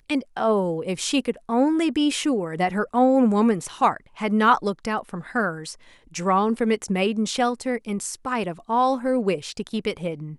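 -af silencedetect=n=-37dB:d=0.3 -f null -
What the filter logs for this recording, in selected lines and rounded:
silence_start: 5.74
silence_end: 6.14 | silence_duration: 0.40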